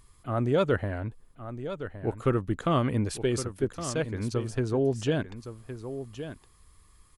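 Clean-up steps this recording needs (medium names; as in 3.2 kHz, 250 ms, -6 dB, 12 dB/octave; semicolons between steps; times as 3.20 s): inverse comb 1115 ms -11 dB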